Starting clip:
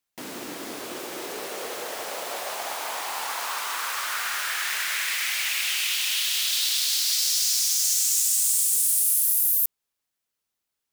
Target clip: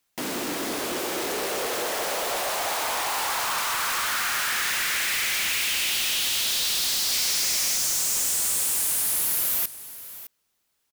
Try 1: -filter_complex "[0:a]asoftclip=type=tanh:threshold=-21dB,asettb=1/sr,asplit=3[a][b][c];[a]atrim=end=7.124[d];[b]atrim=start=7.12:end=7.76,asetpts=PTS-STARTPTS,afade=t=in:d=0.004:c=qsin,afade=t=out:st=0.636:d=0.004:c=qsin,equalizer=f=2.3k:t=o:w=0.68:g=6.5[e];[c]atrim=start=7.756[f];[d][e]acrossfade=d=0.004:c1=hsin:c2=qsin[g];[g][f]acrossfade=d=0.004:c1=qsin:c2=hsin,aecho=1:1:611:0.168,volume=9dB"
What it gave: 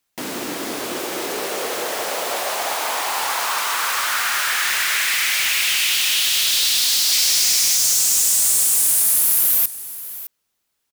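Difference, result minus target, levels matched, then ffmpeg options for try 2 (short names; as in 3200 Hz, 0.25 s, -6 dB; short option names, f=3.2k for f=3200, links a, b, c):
soft clip: distortion -8 dB
-filter_complex "[0:a]asoftclip=type=tanh:threshold=-32.5dB,asettb=1/sr,asplit=3[a][b][c];[a]atrim=end=7.124[d];[b]atrim=start=7.12:end=7.76,asetpts=PTS-STARTPTS,afade=t=in:d=0.004:c=qsin,afade=t=out:st=0.636:d=0.004:c=qsin,equalizer=f=2.3k:t=o:w=0.68:g=6.5[e];[c]atrim=start=7.756[f];[d][e]acrossfade=d=0.004:c1=hsin:c2=qsin[g];[g][f]acrossfade=d=0.004:c1=qsin:c2=hsin,aecho=1:1:611:0.168,volume=9dB"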